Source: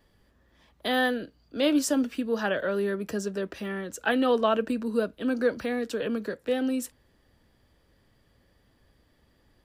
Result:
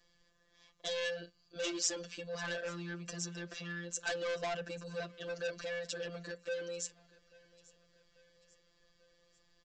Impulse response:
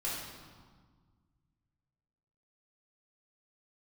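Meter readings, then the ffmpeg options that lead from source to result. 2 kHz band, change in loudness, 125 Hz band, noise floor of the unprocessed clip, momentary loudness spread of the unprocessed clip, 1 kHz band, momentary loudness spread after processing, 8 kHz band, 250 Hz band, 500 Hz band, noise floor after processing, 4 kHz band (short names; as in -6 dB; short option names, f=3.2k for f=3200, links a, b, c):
-9.0 dB, -11.5 dB, -5.0 dB, -66 dBFS, 10 LU, -15.0 dB, 8 LU, -1.0 dB, -20.0 dB, -12.0 dB, -72 dBFS, -5.5 dB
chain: -filter_complex "[0:a]afftfilt=real='hypot(re,im)*cos(PI*b)':imag='0':win_size=1024:overlap=0.75,aecho=1:1:1.8:0.43,aresample=16000,asoftclip=type=tanh:threshold=-28dB,aresample=44100,crystalizer=i=5:c=0,bandreject=f=60:t=h:w=6,bandreject=f=120:t=h:w=6,bandreject=f=180:t=h:w=6,asplit=2[a][b];[b]aecho=0:1:841|1682|2523:0.0708|0.0368|0.0191[c];[a][c]amix=inputs=2:normalize=0,volume=-6.5dB"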